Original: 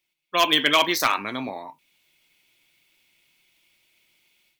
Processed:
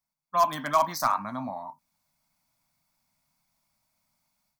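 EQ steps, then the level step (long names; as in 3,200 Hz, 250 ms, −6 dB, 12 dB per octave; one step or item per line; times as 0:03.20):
drawn EQ curve 240 Hz 0 dB, 410 Hz −28 dB, 620 Hz −2 dB, 1,100 Hz +1 dB, 3,000 Hz −27 dB, 4,800 Hz −7 dB
0.0 dB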